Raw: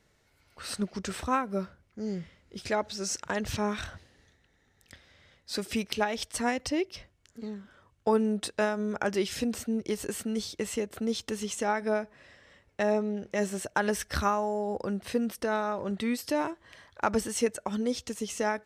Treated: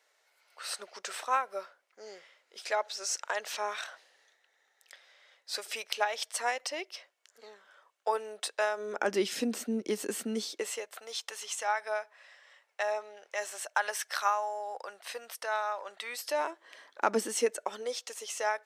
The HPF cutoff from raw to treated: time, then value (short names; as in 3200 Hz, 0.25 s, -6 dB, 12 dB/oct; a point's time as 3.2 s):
HPF 24 dB/oct
8.65 s 550 Hz
9.17 s 220 Hz
10.35 s 220 Hz
10.9 s 670 Hz
16.04 s 670 Hz
17.19 s 240 Hz
18.01 s 550 Hz